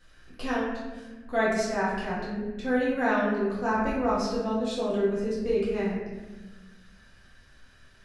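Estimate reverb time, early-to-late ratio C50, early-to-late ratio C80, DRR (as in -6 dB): 1.2 s, 0.0 dB, 3.0 dB, -8.5 dB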